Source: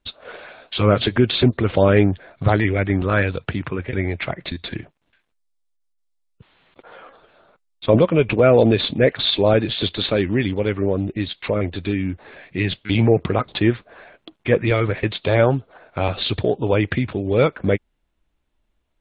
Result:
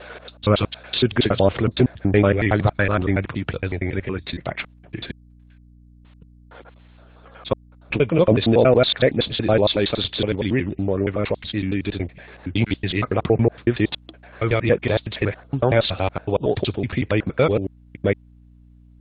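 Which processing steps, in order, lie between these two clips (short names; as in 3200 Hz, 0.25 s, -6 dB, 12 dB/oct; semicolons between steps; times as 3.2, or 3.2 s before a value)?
slices in reverse order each 93 ms, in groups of 5; hum 60 Hz, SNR 27 dB; gain -1 dB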